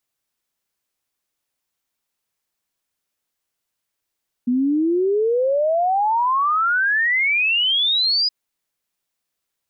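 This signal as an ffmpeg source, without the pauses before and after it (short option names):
-f lavfi -i "aevalsrc='0.168*clip(min(t,3.82-t)/0.01,0,1)*sin(2*PI*240*3.82/log(5000/240)*(exp(log(5000/240)*t/3.82)-1))':d=3.82:s=44100"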